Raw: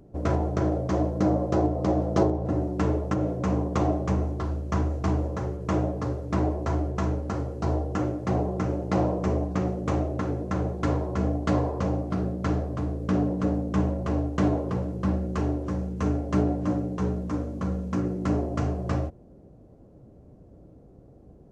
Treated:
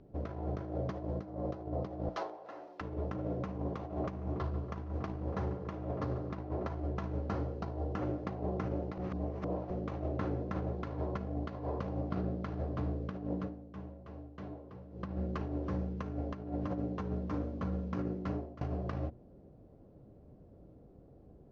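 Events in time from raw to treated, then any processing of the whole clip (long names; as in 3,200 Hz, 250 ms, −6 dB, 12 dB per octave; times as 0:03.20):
0:02.09–0:02.81: high-pass filter 1,000 Hz
0:03.54–0:06.66: feedback echo with a low-pass in the loop 142 ms, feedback 68%, level −11 dB
0:08.98–0:09.70: reverse
0:13.33–0:15.07: duck −15.5 dB, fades 0.17 s
0:18.02–0:18.61: fade out, to −20.5 dB
whole clip: low-pass filter 4,700 Hz 24 dB per octave; mains-hum notches 60/120/180/240/300/360 Hz; compressor whose output falls as the input rises −28 dBFS, ratio −0.5; level −7.5 dB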